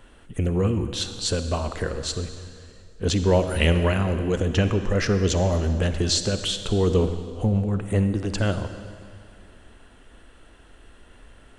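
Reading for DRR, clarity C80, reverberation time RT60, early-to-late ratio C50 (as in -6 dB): 9.0 dB, 10.0 dB, 2.2 s, 9.0 dB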